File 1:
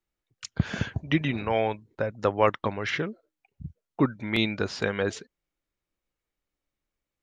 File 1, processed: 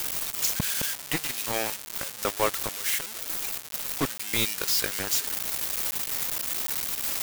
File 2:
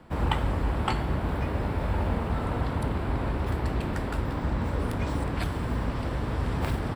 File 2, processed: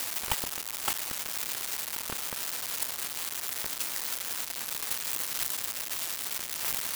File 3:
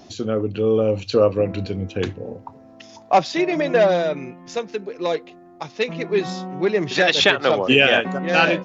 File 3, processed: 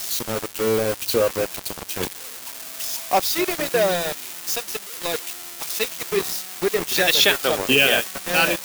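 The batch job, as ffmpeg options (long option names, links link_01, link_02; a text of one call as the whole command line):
ffmpeg -i in.wav -af "aeval=exprs='val(0)+0.5*0.0473*sgn(val(0))':channel_layout=same,aemphasis=mode=production:type=75fm,bandreject=frequency=104.8:width_type=h:width=4,bandreject=frequency=209.6:width_type=h:width=4,bandreject=frequency=314.4:width_type=h:width=4,bandreject=frequency=419.2:width_type=h:width=4,adynamicequalizer=threshold=0.0224:dfrequency=410:dqfactor=3.2:tfrequency=410:tqfactor=3.2:attack=5:release=100:ratio=0.375:range=1.5:mode=boostabove:tftype=bell,aeval=exprs='val(0)*gte(abs(val(0)),0.15)':channel_layout=same,volume=-4.5dB" out.wav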